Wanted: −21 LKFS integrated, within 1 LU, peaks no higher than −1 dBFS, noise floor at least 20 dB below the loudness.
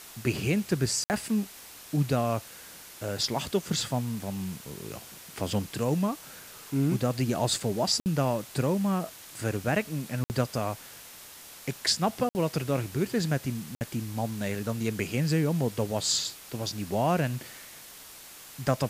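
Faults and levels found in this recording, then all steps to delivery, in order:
number of dropouts 5; longest dropout 59 ms; background noise floor −48 dBFS; target noise floor −50 dBFS; integrated loudness −29.5 LKFS; sample peak −11.5 dBFS; target loudness −21.0 LKFS
→ repair the gap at 0:01.04/0:08.00/0:10.24/0:12.29/0:13.75, 59 ms
noise reduction from a noise print 6 dB
level +8.5 dB

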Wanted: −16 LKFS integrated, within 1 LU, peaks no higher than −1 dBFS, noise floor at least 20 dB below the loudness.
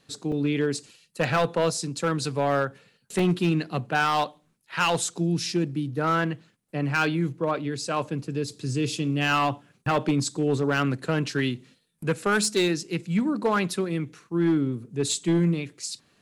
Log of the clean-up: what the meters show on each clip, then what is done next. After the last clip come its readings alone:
share of clipped samples 1.3%; peaks flattened at −16.5 dBFS; number of dropouts 2; longest dropout 2.7 ms; integrated loudness −26.0 LKFS; sample peak −16.5 dBFS; target loudness −16.0 LKFS
→ clipped peaks rebuilt −16.5 dBFS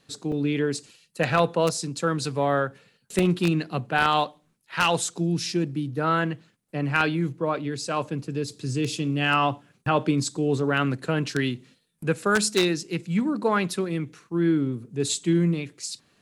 share of clipped samples 0.0%; number of dropouts 2; longest dropout 2.7 ms
→ repair the gap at 0:00.32/0:03.19, 2.7 ms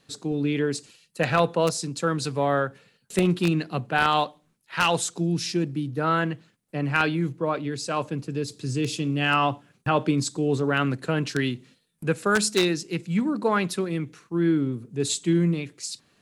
number of dropouts 0; integrated loudness −25.5 LKFS; sample peak −7.5 dBFS; target loudness −16.0 LKFS
→ level +9.5 dB
brickwall limiter −1 dBFS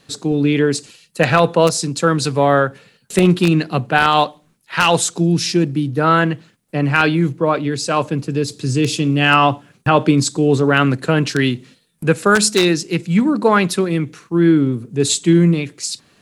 integrated loudness −16.5 LKFS; sample peak −1.0 dBFS; background noise floor −59 dBFS

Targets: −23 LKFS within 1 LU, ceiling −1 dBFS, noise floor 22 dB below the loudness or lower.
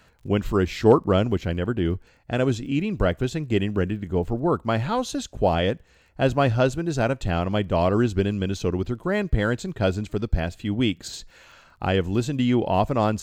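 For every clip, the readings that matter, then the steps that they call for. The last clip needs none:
crackle rate 28 per second; integrated loudness −24.0 LKFS; sample peak −3.5 dBFS; target loudness −23.0 LKFS
→ click removal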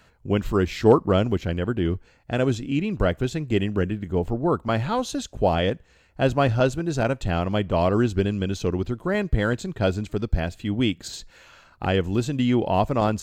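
crackle rate 0 per second; integrated loudness −24.0 LKFS; sample peak −3.5 dBFS; target loudness −23.0 LKFS
→ level +1 dB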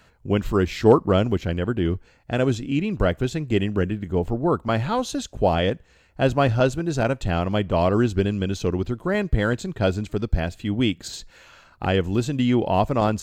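integrated loudness −23.0 LKFS; sample peak −2.5 dBFS; background noise floor −56 dBFS

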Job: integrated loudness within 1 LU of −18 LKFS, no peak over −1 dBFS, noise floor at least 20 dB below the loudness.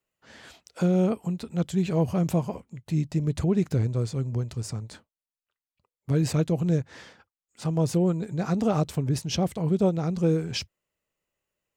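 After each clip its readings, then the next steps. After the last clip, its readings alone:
integrated loudness −26.5 LKFS; sample peak −12.5 dBFS; target loudness −18.0 LKFS
→ level +8.5 dB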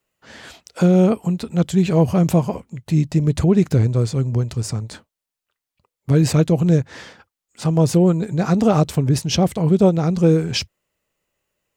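integrated loudness −18.0 LKFS; sample peak −4.0 dBFS; background noise floor −86 dBFS

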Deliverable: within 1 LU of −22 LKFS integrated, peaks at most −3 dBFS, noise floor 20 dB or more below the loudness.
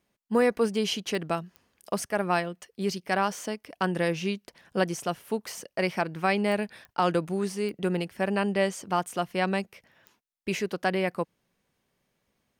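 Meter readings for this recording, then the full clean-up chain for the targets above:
number of clicks 6; integrated loudness −29.0 LKFS; sample peak −13.0 dBFS; target loudness −22.0 LKFS
→ click removal
level +7 dB

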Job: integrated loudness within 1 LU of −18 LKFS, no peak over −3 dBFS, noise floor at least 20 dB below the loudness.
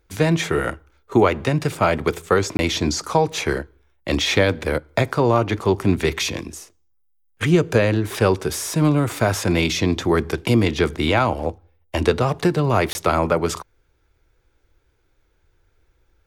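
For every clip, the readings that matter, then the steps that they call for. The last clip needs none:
number of dropouts 2; longest dropout 20 ms; integrated loudness −20.5 LKFS; sample peak −3.0 dBFS; target loudness −18.0 LKFS
→ repair the gap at 0:02.57/0:12.93, 20 ms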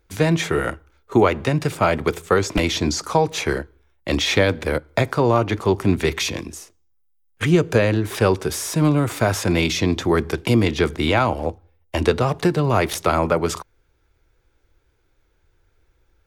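number of dropouts 0; integrated loudness −20.5 LKFS; sample peak −3.0 dBFS; target loudness −18.0 LKFS
→ level +2.5 dB
brickwall limiter −3 dBFS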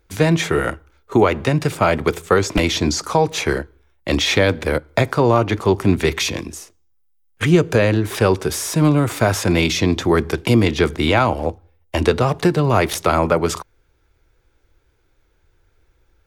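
integrated loudness −18.0 LKFS; sample peak −3.0 dBFS; background noise floor −62 dBFS

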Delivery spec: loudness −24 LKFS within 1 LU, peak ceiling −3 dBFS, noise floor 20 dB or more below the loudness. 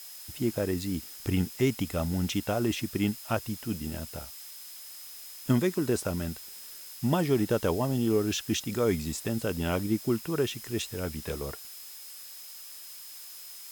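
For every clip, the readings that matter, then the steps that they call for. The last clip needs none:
interfering tone 5,100 Hz; level of the tone −51 dBFS; background noise floor −45 dBFS; target noise floor −50 dBFS; integrated loudness −30.0 LKFS; sample peak −12.5 dBFS; target loudness −24.0 LKFS
→ notch filter 5,100 Hz, Q 30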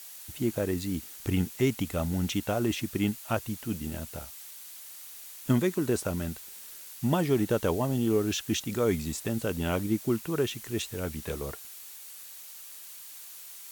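interfering tone none found; background noise floor −46 dBFS; target noise floor −50 dBFS
→ noise reduction from a noise print 6 dB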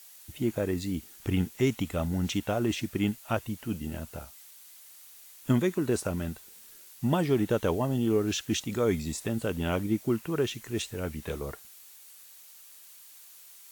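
background noise floor −52 dBFS; integrated loudness −30.0 LKFS; sample peak −12.5 dBFS; target loudness −24.0 LKFS
→ level +6 dB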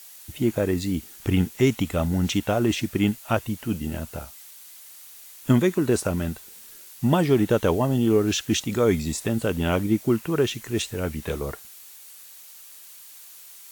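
integrated loudness −24.0 LKFS; sample peak −6.5 dBFS; background noise floor −46 dBFS

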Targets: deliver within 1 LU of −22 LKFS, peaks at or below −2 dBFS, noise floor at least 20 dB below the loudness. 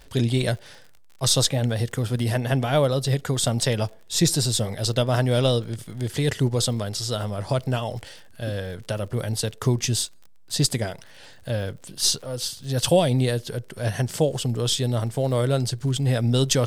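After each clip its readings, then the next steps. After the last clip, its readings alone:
crackle rate 52 per second; integrated loudness −24.0 LKFS; sample peak −4.5 dBFS; target loudness −22.0 LKFS
→ click removal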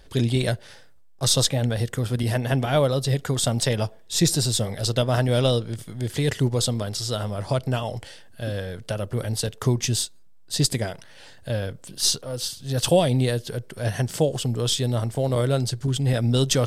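crackle rate 0.30 per second; integrated loudness −24.0 LKFS; sample peak −4.5 dBFS; target loudness −22.0 LKFS
→ level +2 dB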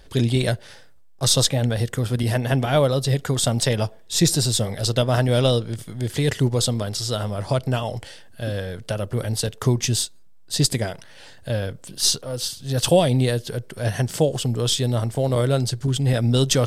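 integrated loudness −22.0 LKFS; sample peak −2.5 dBFS; background noise floor −45 dBFS

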